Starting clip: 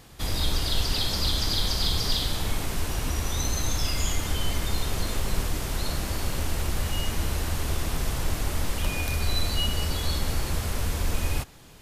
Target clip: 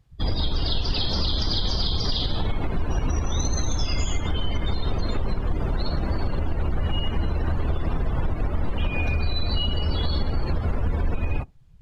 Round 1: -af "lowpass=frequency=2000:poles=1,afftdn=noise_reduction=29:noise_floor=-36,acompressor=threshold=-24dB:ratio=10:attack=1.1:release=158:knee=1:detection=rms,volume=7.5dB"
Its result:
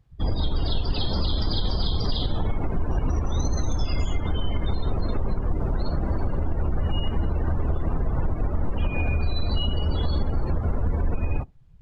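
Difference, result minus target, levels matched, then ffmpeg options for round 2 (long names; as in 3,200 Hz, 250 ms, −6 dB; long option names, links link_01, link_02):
4,000 Hz band −4.5 dB
-af "lowpass=frequency=5100:poles=1,afftdn=noise_reduction=29:noise_floor=-36,acompressor=threshold=-24dB:ratio=10:attack=1.1:release=158:knee=1:detection=rms,volume=7.5dB"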